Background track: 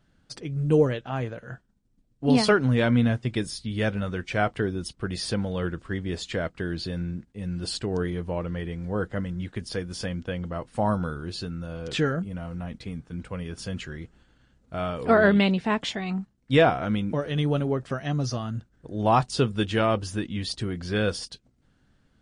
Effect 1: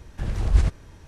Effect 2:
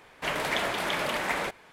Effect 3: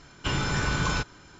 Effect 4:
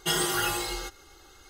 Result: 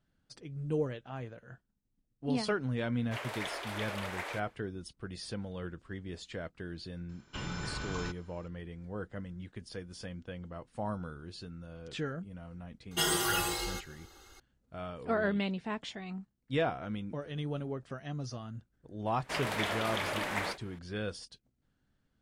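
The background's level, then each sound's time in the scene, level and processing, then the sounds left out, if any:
background track -12 dB
2.89 add 2 -10.5 dB, fades 0.10 s + HPF 330 Hz 24 dB/oct
7.09 add 3 -12.5 dB
12.91 add 4 -3 dB
19.07 add 2 -5.5 dB + ending taper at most 270 dB/s
not used: 1

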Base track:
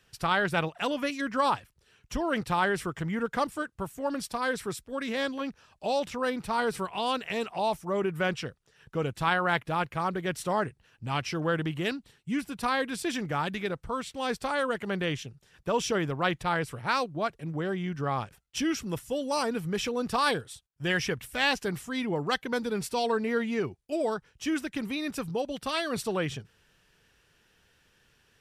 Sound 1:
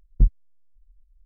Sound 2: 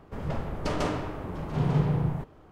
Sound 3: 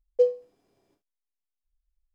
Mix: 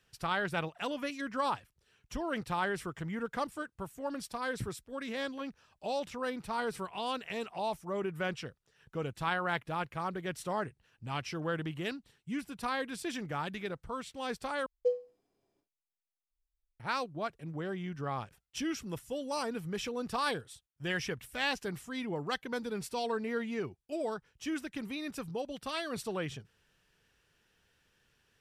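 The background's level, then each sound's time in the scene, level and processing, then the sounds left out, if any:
base track -6.5 dB
4.4 add 1 -11 dB + HPF 90 Hz 24 dB/oct
14.66 replace with 3 -9 dB
not used: 2

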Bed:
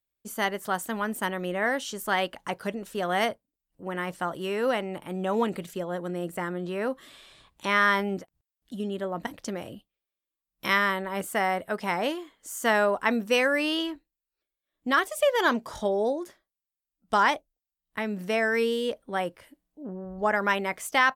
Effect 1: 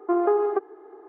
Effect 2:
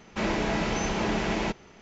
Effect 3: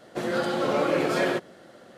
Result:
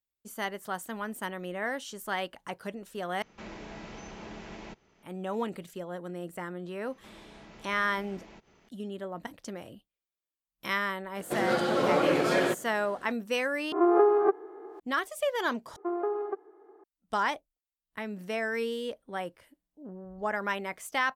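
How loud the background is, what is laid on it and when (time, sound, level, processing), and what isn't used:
bed -6.5 dB
3.22 replace with 2 -16.5 dB + three-band squash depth 40%
6.88 add 2 -10.5 dB + compressor 3:1, threshold -42 dBFS
11.15 add 3 -1 dB
13.72 replace with 1 -0.5 dB + spectral swells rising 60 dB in 0.44 s
15.76 replace with 1 -9.5 dB

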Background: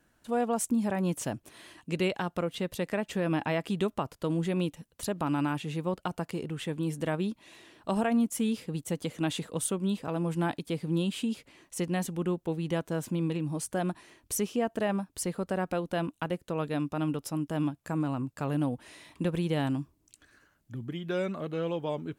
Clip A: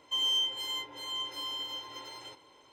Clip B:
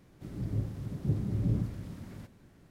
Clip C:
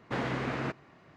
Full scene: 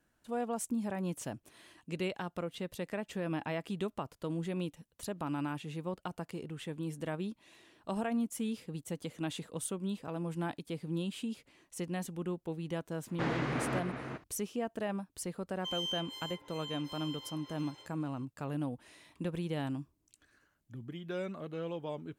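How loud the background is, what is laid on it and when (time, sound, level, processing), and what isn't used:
background -7 dB
13.08 add C -2 dB + outdoor echo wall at 65 m, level -6 dB
15.53 add A -9 dB
not used: B

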